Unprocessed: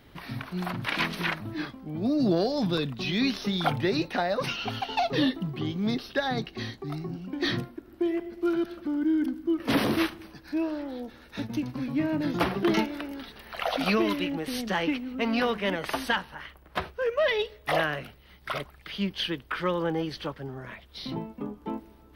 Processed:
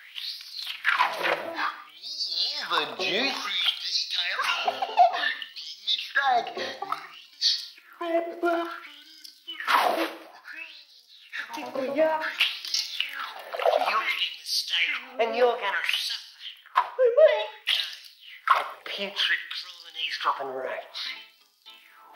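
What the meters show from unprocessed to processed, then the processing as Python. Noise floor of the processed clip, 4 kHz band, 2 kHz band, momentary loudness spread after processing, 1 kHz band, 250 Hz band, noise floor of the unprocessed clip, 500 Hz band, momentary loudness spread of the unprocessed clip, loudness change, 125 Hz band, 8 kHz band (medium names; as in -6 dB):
-54 dBFS, +7.5 dB, +4.0 dB, 15 LU, +6.0 dB, -13.0 dB, -54 dBFS, +3.0 dB, 12 LU, +3.0 dB, under -20 dB, +7.0 dB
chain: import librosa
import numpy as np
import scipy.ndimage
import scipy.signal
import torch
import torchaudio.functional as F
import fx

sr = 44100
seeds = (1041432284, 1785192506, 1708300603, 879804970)

y = fx.filter_lfo_highpass(x, sr, shape='sine', hz=0.57, low_hz=520.0, high_hz=5000.0, q=5.8)
y = fx.rev_gated(y, sr, seeds[0], gate_ms=230, shape='falling', drr_db=9.5)
y = fx.rider(y, sr, range_db=5, speed_s=0.5)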